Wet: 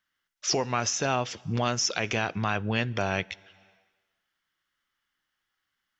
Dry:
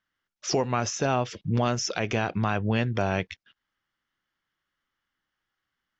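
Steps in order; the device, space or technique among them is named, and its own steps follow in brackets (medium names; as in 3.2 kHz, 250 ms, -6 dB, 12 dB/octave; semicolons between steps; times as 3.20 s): tilt shelf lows -4 dB, about 1.2 kHz; compressed reverb return (on a send at -12 dB: reverberation RT60 1.2 s, pre-delay 43 ms + compression 4:1, threshold -41 dBFS, peak gain reduction 15 dB)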